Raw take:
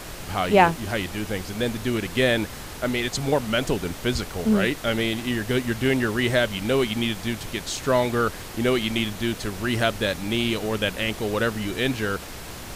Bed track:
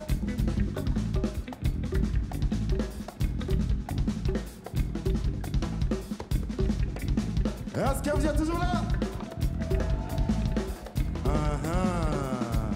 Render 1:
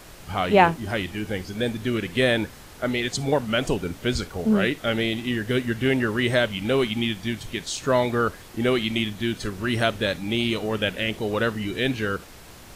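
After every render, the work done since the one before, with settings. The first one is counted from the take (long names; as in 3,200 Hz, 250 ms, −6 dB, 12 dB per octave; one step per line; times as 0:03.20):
noise reduction from a noise print 8 dB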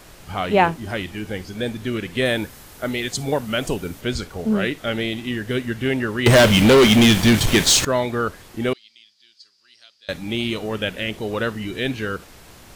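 0:02.25–0:04.01: high-shelf EQ 10,000 Hz +11 dB
0:06.26–0:07.85: leveller curve on the samples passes 5
0:08.73–0:10.09: resonant band-pass 4,800 Hz, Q 12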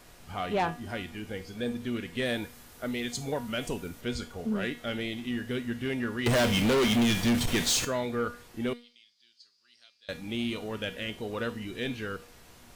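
tuned comb filter 240 Hz, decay 0.38 s, harmonics all, mix 70%
soft clipping −20.5 dBFS, distortion −13 dB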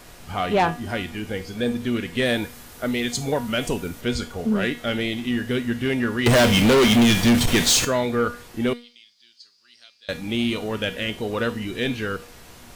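level +8.5 dB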